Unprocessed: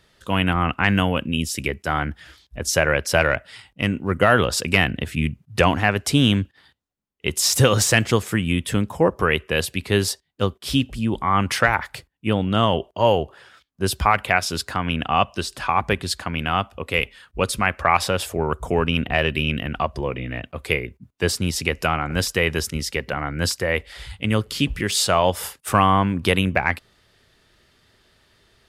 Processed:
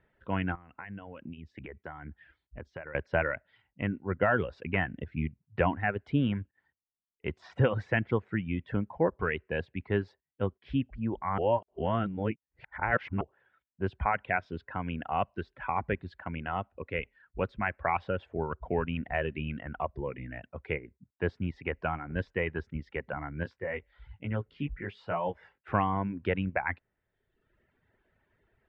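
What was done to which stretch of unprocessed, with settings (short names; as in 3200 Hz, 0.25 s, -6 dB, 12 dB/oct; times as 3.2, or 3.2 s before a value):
0.55–2.95 compressor 8:1, threshold -27 dBFS
11.38–13.21 reverse
23.43–25.61 chorus 1.1 Hz, delay 17 ms, depth 3.9 ms
whole clip: LPF 2100 Hz 24 dB/oct; notch 1200 Hz, Q 7; reverb removal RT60 0.99 s; gain -8.5 dB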